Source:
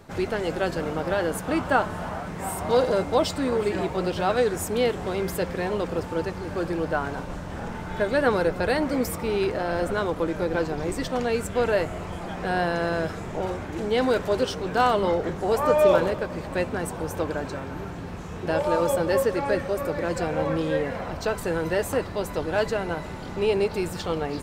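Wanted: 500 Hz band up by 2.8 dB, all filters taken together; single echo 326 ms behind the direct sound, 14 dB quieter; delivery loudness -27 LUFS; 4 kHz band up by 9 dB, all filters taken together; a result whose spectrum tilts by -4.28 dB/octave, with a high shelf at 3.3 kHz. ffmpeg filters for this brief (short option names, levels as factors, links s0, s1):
-af "equalizer=f=500:t=o:g=3,highshelf=f=3300:g=4.5,equalizer=f=4000:t=o:g=8,aecho=1:1:326:0.2,volume=0.631"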